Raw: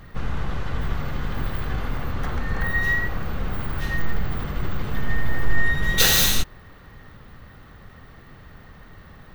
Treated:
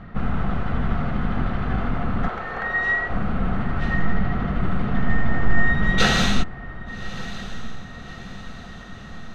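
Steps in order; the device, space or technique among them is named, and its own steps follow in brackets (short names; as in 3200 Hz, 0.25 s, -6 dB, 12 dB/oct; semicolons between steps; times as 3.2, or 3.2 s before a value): 2.28–3.1 steep high-pass 360 Hz; inside a cardboard box (LPF 2800 Hz 12 dB/oct; small resonant body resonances 210/700/1300 Hz, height 10 dB, ringing for 40 ms); dynamic EQ 7600 Hz, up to +5 dB, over -52 dBFS, Q 1.2; diffused feedback echo 1.197 s, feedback 53%, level -15 dB; gain +1.5 dB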